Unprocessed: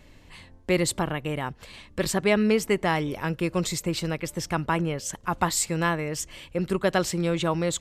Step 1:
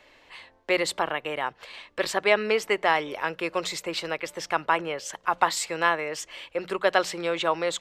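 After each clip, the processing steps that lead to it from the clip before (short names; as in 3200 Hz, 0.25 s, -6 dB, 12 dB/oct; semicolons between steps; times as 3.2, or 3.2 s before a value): three-band isolator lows -22 dB, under 420 Hz, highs -12 dB, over 4800 Hz; notches 60/120/180 Hz; gain +4 dB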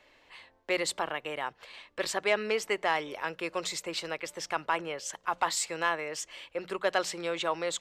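dynamic EQ 7300 Hz, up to +5 dB, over -47 dBFS, Q 0.86; soft clip -7.5 dBFS, distortion -23 dB; gain -5.5 dB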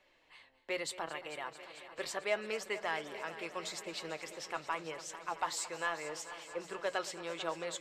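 flange 0.78 Hz, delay 5.2 ms, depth 2.8 ms, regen +62%; multi-head echo 0.222 s, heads first and second, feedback 74%, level -17 dB; gain -3.5 dB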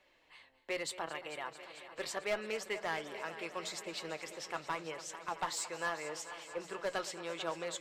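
one-sided clip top -32 dBFS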